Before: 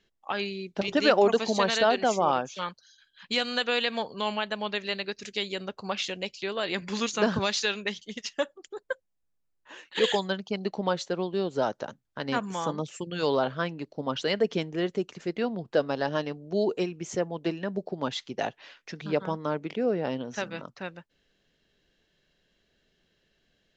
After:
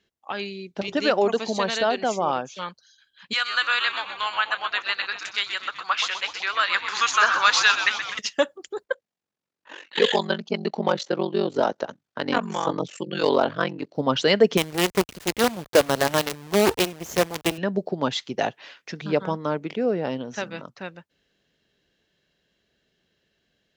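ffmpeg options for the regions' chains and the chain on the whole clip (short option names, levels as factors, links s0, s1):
-filter_complex "[0:a]asettb=1/sr,asplit=3[s0][s1][s2];[s0]atrim=end=3.334[s3];[s1]atrim=start=3.33:end=8.19,asetpts=PTS-STARTPTS,afade=t=in:d=0.004:c=qsin,afade=t=out:st=4.856:d=0.004:c=qsin,highpass=f=1300:t=q:w=3.5,asplit=8[s4][s5][s6][s7][s8][s9][s10][s11];[s5]adelay=126,afreqshift=-94,volume=0.316[s12];[s6]adelay=252,afreqshift=-188,volume=0.186[s13];[s7]adelay=378,afreqshift=-282,volume=0.11[s14];[s8]adelay=504,afreqshift=-376,volume=0.0653[s15];[s9]adelay=630,afreqshift=-470,volume=0.0385[s16];[s10]adelay=756,afreqshift=-564,volume=0.0226[s17];[s11]adelay=882,afreqshift=-658,volume=0.0133[s18];[s4][s12][s13][s14][s15][s16][s17][s18]amix=inputs=8:normalize=0,atrim=end_sample=214326[s19];[s2]atrim=start=8.186[s20];[s3][s19]acrossfade=d=0.004:c1=hsin:c2=qsin[s21];[s21][s20]acrossfade=d=0.004:c1=qsin:c2=hsin,asettb=1/sr,asplit=3[s22][s23][s24];[s22]atrim=end=8.844[s25];[s23]atrim=start=8.84:end=13.95,asetpts=PTS-STARTPTS,afade=t=in:d=0.004:c=qsin,afade=t=out:st=5.106:d=0.004:c=qsin,asoftclip=type=hard:threshold=0.168,aeval=exprs='val(0)*sin(2*PI*23*n/s)':c=same,highpass=170,lowpass=5900[s26];[s24]atrim=start=13.946[s27];[s25][s26]acrossfade=d=0.004:c1=hsin:c2=qsin[s28];[s28][s27]acrossfade=d=0.004:c1=qsin:c2=hsin,asettb=1/sr,asplit=3[s29][s30][s31];[s29]atrim=end=14.574[s32];[s30]atrim=start=14.57:end=17.58,asetpts=PTS-STARTPTS,afade=t=in:d=0.004:c=qsin,afade=t=out:st=3.006:d=0.004:c=qsin,lowshelf=f=290:g=-4.5,acrusher=bits=5:dc=4:mix=0:aa=0.000001[s33];[s31]atrim=start=17.576[s34];[s32][s33]acrossfade=d=0.004:c1=hsin:c2=qsin[s35];[s35][s34]acrossfade=d=0.004:c1=qsin:c2=hsin,highpass=56,dynaudnorm=f=680:g=17:m=3.16"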